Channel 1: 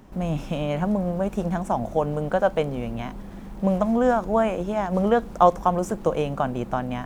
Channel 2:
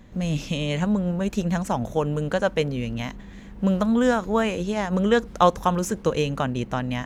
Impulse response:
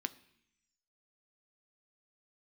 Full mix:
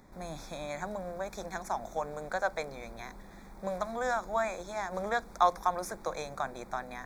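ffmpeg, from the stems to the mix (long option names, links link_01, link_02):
-filter_complex "[0:a]volume=-5dB[link_01];[1:a]volume=-1,volume=-9.5dB[link_02];[link_01][link_02]amix=inputs=2:normalize=0,asuperstop=centerf=2900:order=8:qfactor=2.9,lowshelf=frequency=470:gain=-6.5"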